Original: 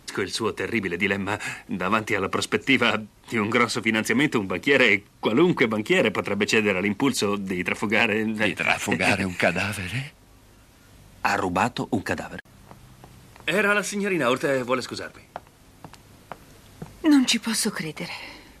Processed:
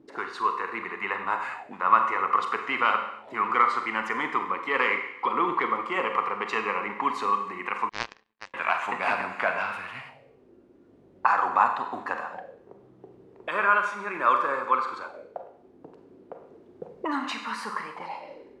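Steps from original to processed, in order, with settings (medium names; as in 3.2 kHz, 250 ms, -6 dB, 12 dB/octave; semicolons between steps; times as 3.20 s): Schroeder reverb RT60 0.82 s, combs from 32 ms, DRR 5 dB; auto-wah 320–1100 Hz, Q 4.6, up, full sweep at -25.5 dBFS; 7.89–8.54 s: power-law waveshaper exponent 3; trim +8.5 dB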